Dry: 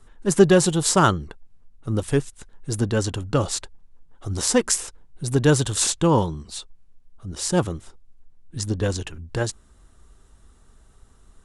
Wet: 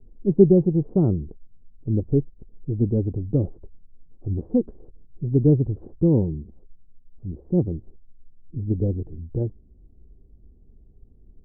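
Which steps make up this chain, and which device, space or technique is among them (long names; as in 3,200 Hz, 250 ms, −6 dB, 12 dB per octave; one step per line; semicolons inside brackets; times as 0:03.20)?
under water (low-pass filter 410 Hz 24 dB per octave; parametric band 750 Hz +6 dB 0.22 octaves)
level +2 dB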